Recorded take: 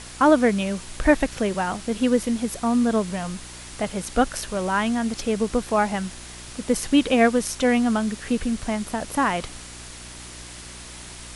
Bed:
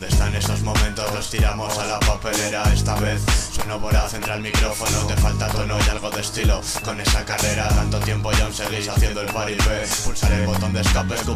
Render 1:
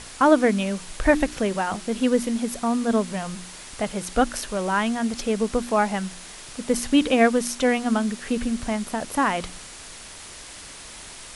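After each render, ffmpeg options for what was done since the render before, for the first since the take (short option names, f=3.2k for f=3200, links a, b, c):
-af "bandreject=f=60:t=h:w=4,bandreject=f=120:t=h:w=4,bandreject=f=180:t=h:w=4,bandreject=f=240:t=h:w=4,bandreject=f=300:t=h:w=4,bandreject=f=360:t=h:w=4"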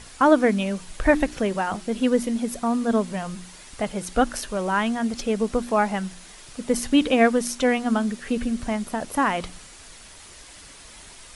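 -af "afftdn=nr=6:nf=-41"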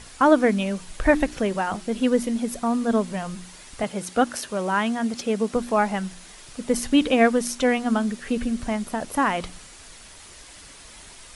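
-filter_complex "[0:a]asettb=1/sr,asplit=3[a][b][c];[a]atrim=end=3.834[d];[b]atrim=start=3.83:end=5.56,asetpts=PTS-STARTPTS,afade=t=in:d=0.004:c=qsin,afade=t=out:st=1.726:d=0.004:c=qsin,highpass=110[e];[c]atrim=start=5.556[f];[d][e]acrossfade=d=0.004:c1=hsin:c2=qsin[g];[g][f]acrossfade=d=0.004:c1=qsin:c2=hsin"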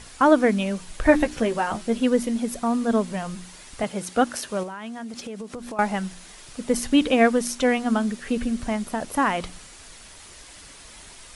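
-filter_complex "[0:a]asettb=1/sr,asplit=3[a][b][c];[a]atrim=end=1.044[d];[b]atrim=start=1.04:end=1.98,asetpts=PTS-STARTPTS,afade=t=in:d=0.004:c=qsin,afade=t=out:st=0.936:d=0.004:c=qsin,asplit=2[e][f];[f]adelay=13,volume=-6dB[g];[e][g]amix=inputs=2:normalize=0,atrim=end_sample=41454[h];[c]atrim=start=1.976[i];[d][h]acrossfade=d=0.004:c1=hsin:c2=qsin[j];[j][i]acrossfade=d=0.004:c1=qsin:c2=hsin,asettb=1/sr,asplit=3[k][l][m];[k]atrim=end=4.634[n];[l]atrim=start=4.63:end=5.79,asetpts=PTS-STARTPTS,afade=t=in:d=0.004:c=qsin,afade=t=out:st=1.156:d=0.004:c=qsin,acompressor=threshold=-31dB:ratio=12:attack=3.2:release=140:knee=1:detection=peak[o];[m]atrim=start=5.786[p];[n][o]acrossfade=d=0.004:c1=hsin:c2=qsin[q];[q][p]acrossfade=d=0.004:c1=qsin:c2=hsin"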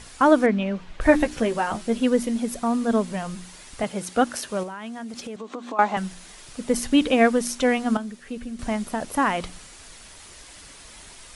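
-filter_complex "[0:a]asettb=1/sr,asplit=3[a][b][c];[a]atrim=end=0.464[d];[b]atrim=start=0.46:end=1.01,asetpts=PTS-STARTPTS,afade=t=in:d=0.004:c=qsin,afade=t=out:st=0.546:d=0.004:c=qsin,lowpass=2.9k[e];[c]atrim=start=1.006[f];[d][e]acrossfade=d=0.004:c1=hsin:c2=qsin[g];[g][f]acrossfade=d=0.004:c1=qsin:c2=hsin,asettb=1/sr,asplit=3[h][i][j];[h]atrim=end=5.364[k];[i]atrim=start=5.36:end=5.97,asetpts=PTS-STARTPTS,afade=t=in:d=0.004:c=qsin,afade=t=out:st=0.606:d=0.004:c=qsin,highpass=f=240:w=0.5412,highpass=f=240:w=1.3066,equalizer=f=280:t=q:w=4:g=6,equalizer=f=760:t=q:w=4:g=4,equalizer=f=1.1k:t=q:w=4:g=9,equalizer=f=3.6k:t=q:w=4:g=4,equalizer=f=5.2k:t=q:w=4:g=-7,lowpass=f=6.9k:w=0.5412,lowpass=f=6.9k:w=1.3066[l];[j]atrim=start=5.966[m];[k][l]acrossfade=d=0.004:c1=hsin:c2=qsin[n];[n][m]acrossfade=d=0.004:c1=qsin:c2=hsin,asplit=3[o][p][q];[o]atrim=end=7.972[r];[p]atrim=start=7.968:end=8.592,asetpts=PTS-STARTPTS,volume=-8.5dB[s];[q]atrim=start=8.588[t];[r][s]acrossfade=d=0.004:c1=hsin:c2=hsin[u];[u][t]acrossfade=d=0.004:c1=hsin:c2=hsin"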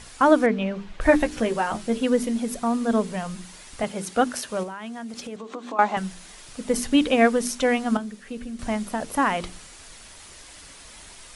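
-af "bandreject=f=50:t=h:w=6,bandreject=f=100:t=h:w=6,bandreject=f=150:t=h:w=6,bandreject=f=200:t=h:w=6,bandreject=f=250:t=h:w=6,bandreject=f=300:t=h:w=6,bandreject=f=350:t=h:w=6,bandreject=f=400:t=h:w=6,bandreject=f=450:t=h:w=6"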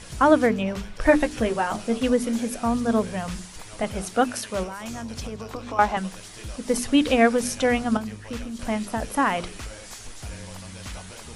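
-filter_complex "[1:a]volume=-19.5dB[a];[0:a][a]amix=inputs=2:normalize=0"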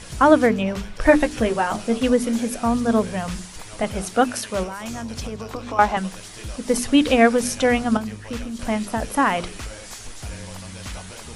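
-af "volume=3dB"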